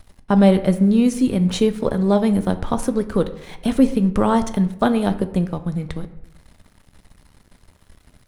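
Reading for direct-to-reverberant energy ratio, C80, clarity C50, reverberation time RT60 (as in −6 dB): 9.5 dB, 16.0 dB, 13.5 dB, 0.85 s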